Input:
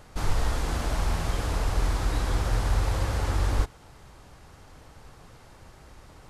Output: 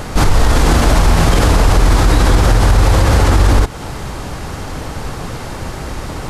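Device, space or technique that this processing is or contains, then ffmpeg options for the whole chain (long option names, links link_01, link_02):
mastering chain: -af "equalizer=frequency=240:width_type=o:width=1.6:gain=3.5,acompressor=threshold=-27dB:ratio=3,alimiter=level_in=25.5dB:limit=-1dB:release=50:level=0:latency=1,volume=-1dB"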